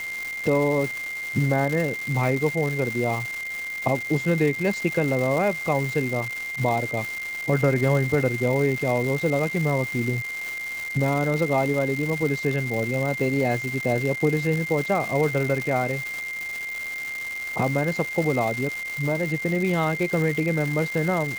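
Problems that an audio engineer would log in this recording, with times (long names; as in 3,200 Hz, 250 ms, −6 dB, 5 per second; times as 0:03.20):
surface crackle 480 per second −27 dBFS
whistle 2,100 Hz −29 dBFS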